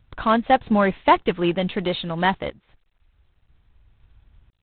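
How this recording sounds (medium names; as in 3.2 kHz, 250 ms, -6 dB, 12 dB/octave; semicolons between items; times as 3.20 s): random-step tremolo 2 Hz, depth 90%; G.726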